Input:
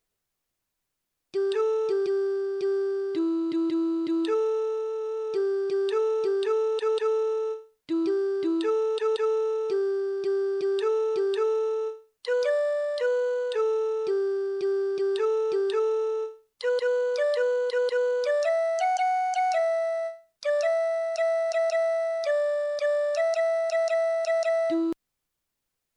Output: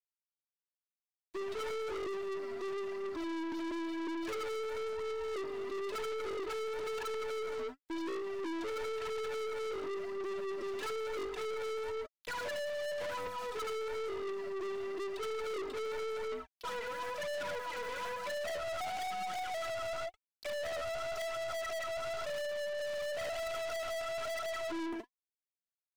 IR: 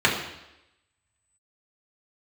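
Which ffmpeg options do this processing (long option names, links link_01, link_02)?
-filter_complex "[0:a]lowshelf=frequency=430:gain=-10,asplit=2[link_01][link_02];[link_02]adelay=75,lowpass=frequency=2600:poles=1,volume=-4dB,asplit=2[link_03][link_04];[link_04]adelay=75,lowpass=frequency=2600:poles=1,volume=0.36,asplit=2[link_05][link_06];[link_06]adelay=75,lowpass=frequency=2600:poles=1,volume=0.36,asplit=2[link_07][link_08];[link_08]adelay=75,lowpass=frequency=2600:poles=1,volume=0.36,asplit=2[link_09][link_10];[link_10]adelay=75,lowpass=frequency=2600:poles=1,volume=0.36[link_11];[link_01][link_03][link_05][link_07][link_09][link_11]amix=inputs=6:normalize=0,afwtdn=0.0178,aeval=exprs='sgn(val(0))*max(abs(val(0))-0.00562,0)':channel_layout=same,aphaser=in_gain=1:out_gain=1:delay=4.6:decay=0.68:speed=0.98:type=triangular,acompressor=threshold=-31dB:ratio=2.5,aecho=1:1:3:0.86,aeval=exprs='(tanh(158*val(0)+0.25)-tanh(0.25))/158':channel_layout=same,volume=7dB"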